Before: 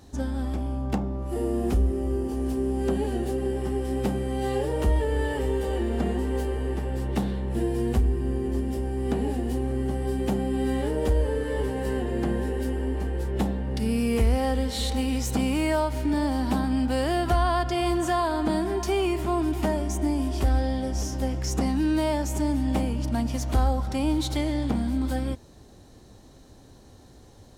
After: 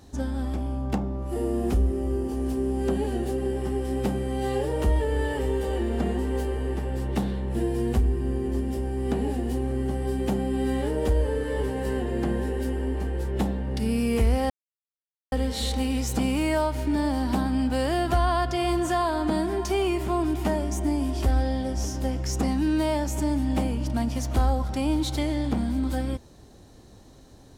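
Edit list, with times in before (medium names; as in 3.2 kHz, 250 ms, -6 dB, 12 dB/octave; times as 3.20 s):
14.50 s: insert silence 0.82 s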